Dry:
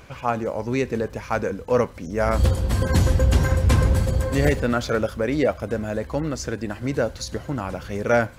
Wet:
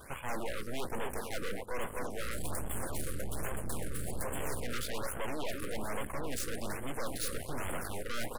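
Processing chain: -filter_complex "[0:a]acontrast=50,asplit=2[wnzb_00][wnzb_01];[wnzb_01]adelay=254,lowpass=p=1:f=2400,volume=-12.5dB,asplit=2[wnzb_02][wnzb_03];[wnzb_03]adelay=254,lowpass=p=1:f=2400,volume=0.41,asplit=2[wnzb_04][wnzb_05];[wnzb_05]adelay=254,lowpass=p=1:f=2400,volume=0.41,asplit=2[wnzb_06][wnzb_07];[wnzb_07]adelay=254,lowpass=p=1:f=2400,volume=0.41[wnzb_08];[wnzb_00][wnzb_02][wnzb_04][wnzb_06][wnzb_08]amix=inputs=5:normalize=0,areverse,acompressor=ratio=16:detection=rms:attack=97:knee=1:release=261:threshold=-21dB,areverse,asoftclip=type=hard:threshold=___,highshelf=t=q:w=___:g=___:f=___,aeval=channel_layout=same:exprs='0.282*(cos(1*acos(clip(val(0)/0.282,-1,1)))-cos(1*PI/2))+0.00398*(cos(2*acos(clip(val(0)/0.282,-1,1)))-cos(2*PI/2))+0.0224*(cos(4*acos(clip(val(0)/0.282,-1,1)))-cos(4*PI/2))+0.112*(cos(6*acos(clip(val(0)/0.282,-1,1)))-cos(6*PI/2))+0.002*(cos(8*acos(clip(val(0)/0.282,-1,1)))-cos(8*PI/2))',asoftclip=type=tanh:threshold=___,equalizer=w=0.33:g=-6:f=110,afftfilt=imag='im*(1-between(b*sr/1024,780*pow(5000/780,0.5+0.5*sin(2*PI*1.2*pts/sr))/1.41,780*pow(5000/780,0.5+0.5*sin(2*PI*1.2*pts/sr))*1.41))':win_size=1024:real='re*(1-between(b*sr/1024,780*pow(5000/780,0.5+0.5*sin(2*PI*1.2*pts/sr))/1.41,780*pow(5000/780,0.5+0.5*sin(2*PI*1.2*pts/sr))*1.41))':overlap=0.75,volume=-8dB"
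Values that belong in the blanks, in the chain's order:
-16.5dB, 3, 8.5, 7700, -18.5dB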